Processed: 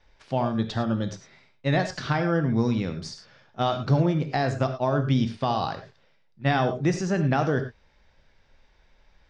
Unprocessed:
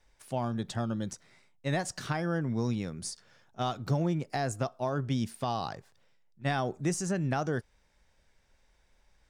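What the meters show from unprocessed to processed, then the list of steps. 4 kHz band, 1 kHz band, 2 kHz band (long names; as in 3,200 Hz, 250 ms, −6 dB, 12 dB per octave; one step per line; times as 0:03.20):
+6.5 dB, +7.0 dB, +7.0 dB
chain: low-pass filter 5,000 Hz 24 dB per octave
reverb whose tail is shaped and stops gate 130 ms flat, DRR 7 dB
level +6.5 dB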